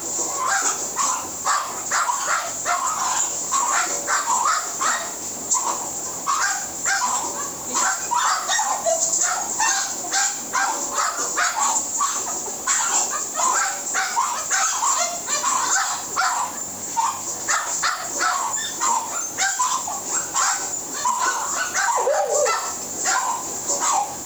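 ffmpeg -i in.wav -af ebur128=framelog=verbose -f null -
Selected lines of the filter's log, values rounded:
Integrated loudness:
  I:         -20.8 LUFS
  Threshold: -30.8 LUFS
Loudness range:
  LRA:         1.7 LU
  Threshold: -40.7 LUFS
  LRA low:   -21.6 LUFS
  LRA high:  -19.9 LUFS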